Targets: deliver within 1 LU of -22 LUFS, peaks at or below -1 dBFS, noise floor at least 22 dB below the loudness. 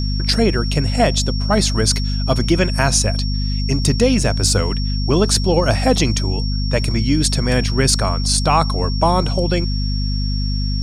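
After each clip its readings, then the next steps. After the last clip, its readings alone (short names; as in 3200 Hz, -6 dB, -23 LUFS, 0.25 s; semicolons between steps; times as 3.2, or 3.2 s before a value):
hum 50 Hz; harmonics up to 250 Hz; hum level -17 dBFS; steady tone 5500 Hz; tone level -28 dBFS; loudness -17.5 LUFS; peak -1.0 dBFS; loudness target -22.0 LUFS
-> de-hum 50 Hz, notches 5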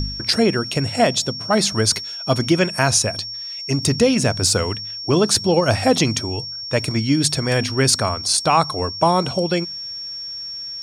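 hum none; steady tone 5500 Hz; tone level -28 dBFS
-> notch 5500 Hz, Q 30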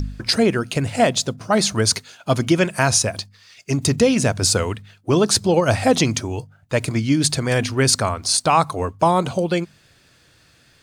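steady tone none; loudness -19.0 LUFS; peak -2.0 dBFS; loudness target -22.0 LUFS
-> gain -3 dB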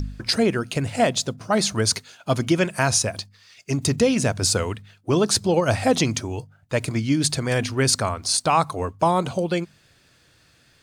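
loudness -22.0 LUFS; peak -5.0 dBFS; noise floor -59 dBFS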